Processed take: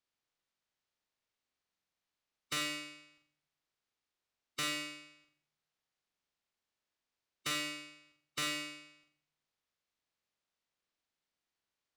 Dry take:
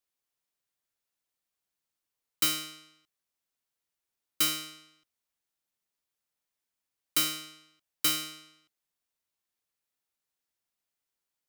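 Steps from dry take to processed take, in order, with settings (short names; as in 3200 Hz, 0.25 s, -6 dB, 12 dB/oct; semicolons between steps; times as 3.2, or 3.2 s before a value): spectral limiter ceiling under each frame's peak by 12 dB; LPF 5500 Hz 12 dB/oct; soft clip -31.5 dBFS, distortion -9 dB; flutter echo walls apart 7.2 m, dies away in 0.48 s; on a send at -21 dB: reverb RT60 0.70 s, pre-delay 3 ms; on the sum: speed mistake 25 fps video run at 24 fps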